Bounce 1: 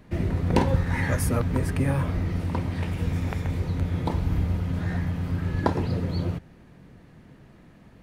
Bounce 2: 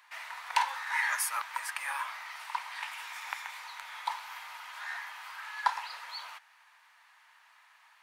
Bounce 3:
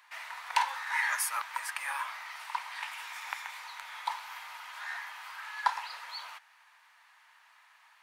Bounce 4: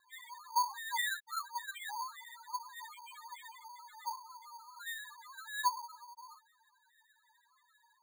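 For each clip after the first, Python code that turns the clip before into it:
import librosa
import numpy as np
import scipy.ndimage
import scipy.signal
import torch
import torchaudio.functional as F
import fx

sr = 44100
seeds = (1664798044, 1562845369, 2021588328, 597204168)

y1 = scipy.signal.sosfilt(scipy.signal.ellip(4, 1.0, 60, 910.0, 'highpass', fs=sr, output='sos'), x)
y1 = F.gain(torch.from_numpy(y1), 2.5).numpy()
y2 = y1
y3 = fx.spec_topn(y2, sr, count=1)
y3 = fx.vibrato(y3, sr, rate_hz=6.8, depth_cents=37.0)
y3 = np.repeat(scipy.signal.resample_poly(y3, 1, 8), 8)[:len(y3)]
y3 = F.gain(torch.from_numpy(y3), 7.0).numpy()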